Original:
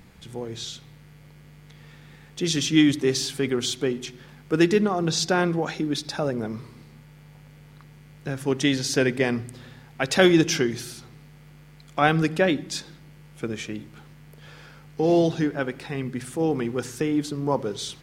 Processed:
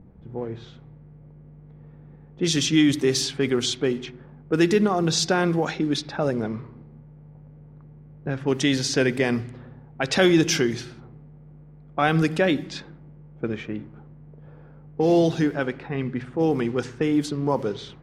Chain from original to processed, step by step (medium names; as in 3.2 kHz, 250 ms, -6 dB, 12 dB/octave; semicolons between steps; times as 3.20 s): level-controlled noise filter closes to 510 Hz, open at -20 dBFS; in parallel at +2.5 dB: peak limiter -14.5 dBFS, peak gain reduction 11.5 dB; on the sum: trim -5 dB